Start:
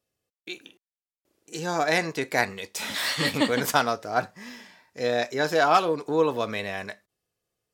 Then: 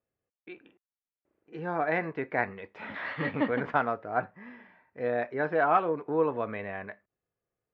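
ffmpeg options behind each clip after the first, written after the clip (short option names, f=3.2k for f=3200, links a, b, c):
-af "lowpass=f=2.1k:w=0.5412,lowpass=f=2.1k:w=1.3066,volume=-4dB"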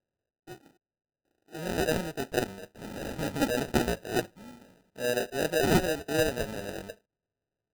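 -af "acrusher=samples=40:mix=1:aa=0.000001"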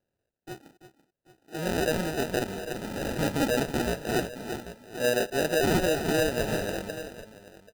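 -af "aecho=1:1:335|786:0.237|0.133,alimiter=limit=-22.5dB:level=0:latency=1:release=57,volume=5dB"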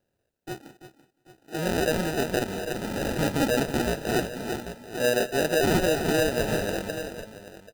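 -filter_complex "[0:a]asplit=2[a][b];[b]acompressor=threshold=-34dB:ratio=6,volume=-2dB[c];[a][c]amix=inputs=2:normalize=0,aecho=1:1:178|356|534:0.119|0.0357|0.0107"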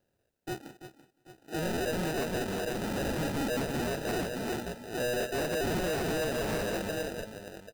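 -af "asoftclip=type=hard:threshold=-29dB"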